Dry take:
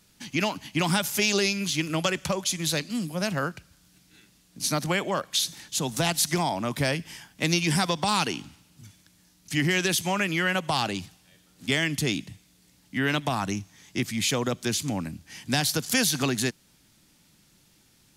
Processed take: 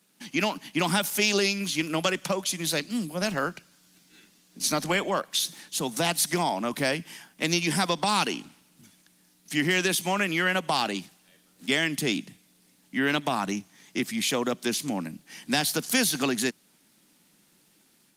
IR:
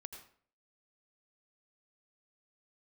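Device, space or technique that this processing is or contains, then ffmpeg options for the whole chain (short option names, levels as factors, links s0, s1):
video call: -filter_complex "[0:a]asettb=1/sr,asplit=3[s0][s1][s2];[s0]atrim=end=12.004[s3];[s1]atrim=start=12:end=13.98,asetpts=PTS-STARTPTS,afade=t=in:d=0.004:c=qsin,afade=t=out:st=1.976:d=0.004:c=qsin,lowshelf=f=150:g=2[s4];[s2]atrim=start=13.976[s5];[s3][s4]acrossfade=d=0.004:c1=hsin:c2=qsin[s6];[s6][s5]acrossfade=d=0.004:c1=qsin:c2=hsin,highpass=f=180:w=0.5412,highpass=f=180:w=1.3066,dynaudnorm=f=130:g=3:m=1.58,volume=0.708" -ar 48000 -c:a libopus -b:a 32k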